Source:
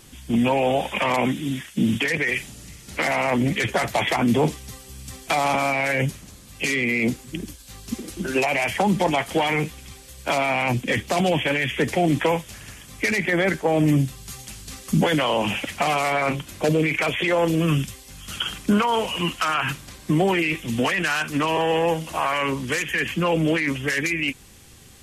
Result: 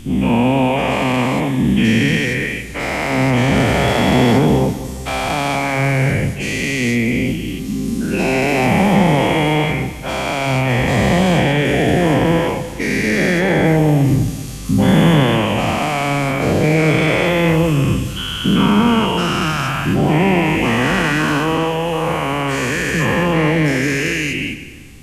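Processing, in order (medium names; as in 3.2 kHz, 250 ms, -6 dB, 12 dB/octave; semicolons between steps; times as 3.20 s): every event in the spectrogram widened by 480 ms; bass shelf 280 Hz +10.5 dB; on a send: reverberation RT60 1.6 s, pre-delay 103 ms, DRR 12 dB; on the sum: trim -5 dB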